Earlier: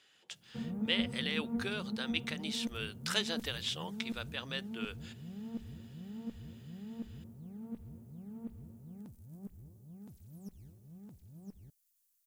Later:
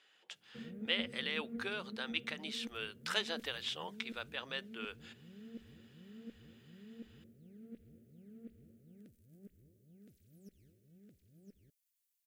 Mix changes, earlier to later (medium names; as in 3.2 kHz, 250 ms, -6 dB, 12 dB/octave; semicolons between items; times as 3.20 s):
background: add Butterworth band-stop 930 Hz, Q 0.79; master: add tone controls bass -14 dB, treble -8 dB